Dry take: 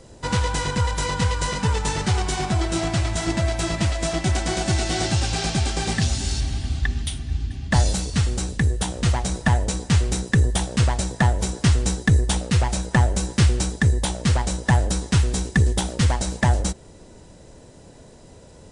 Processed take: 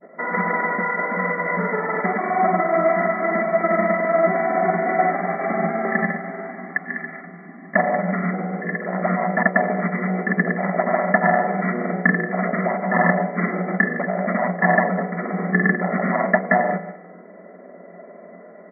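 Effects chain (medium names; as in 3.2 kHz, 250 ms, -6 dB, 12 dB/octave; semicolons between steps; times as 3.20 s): flutter echo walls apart 8.5 m, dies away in 0.78 s; reverberation RT60 0.40 s, pre-delay 3 ms, DRR 3.5 dB; granulator, pitch spread up and down by 0 st; FFT band-pass 170–2300 Hz; comb 1.6 ms, depth 68%; trim +4 dB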